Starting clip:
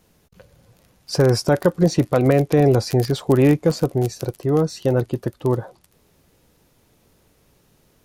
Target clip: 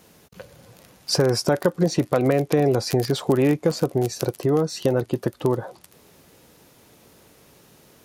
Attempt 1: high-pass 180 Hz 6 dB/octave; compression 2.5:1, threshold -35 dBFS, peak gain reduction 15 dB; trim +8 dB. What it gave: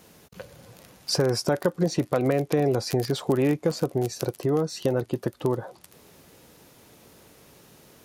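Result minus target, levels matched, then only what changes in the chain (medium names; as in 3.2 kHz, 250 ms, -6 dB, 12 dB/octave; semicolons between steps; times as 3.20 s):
compression: peak gain reduction +3.5 dB
change: compression 2.5:1, threshold -29 dBFS, peak gain reduction 11.5 dB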